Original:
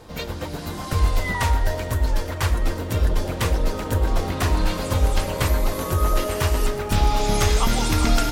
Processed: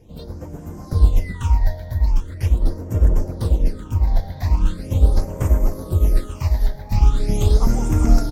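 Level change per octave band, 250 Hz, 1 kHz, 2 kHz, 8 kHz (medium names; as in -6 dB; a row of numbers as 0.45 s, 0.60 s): +0.5 dB, -8.0 dB, -12.0 dB, -8.5 dB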